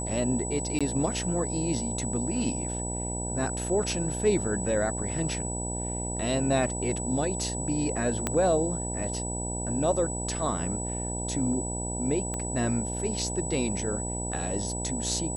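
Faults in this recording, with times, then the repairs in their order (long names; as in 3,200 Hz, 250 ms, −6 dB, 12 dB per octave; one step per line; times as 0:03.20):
mains buzz 60 Hz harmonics 16 −34 dBFS
whistle 7,900 Hz −34 dBFS
0:00.79–0:00.81: drop-out 16 ms
0:08.27: click −12 dBFS
0:12.34: click −20 dBFS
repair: click removal
hum removal 60 Hz, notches 16
notch filter 7,900 Hz, Q 30
repair the gap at 0:00.79, 16 ms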